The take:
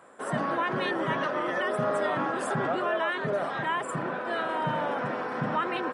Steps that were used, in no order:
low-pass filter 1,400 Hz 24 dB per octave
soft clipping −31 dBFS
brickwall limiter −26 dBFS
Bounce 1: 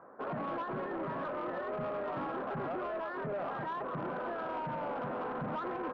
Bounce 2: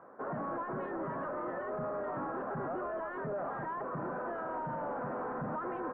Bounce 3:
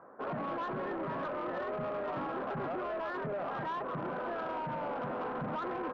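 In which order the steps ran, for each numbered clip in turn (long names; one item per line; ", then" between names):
brickwall limiter, then low-pass filter, then soft clipping
brickwall limiter, then soft clipping, then low-pass filter
low-pass filter, then brickwall limiter, then soft clipping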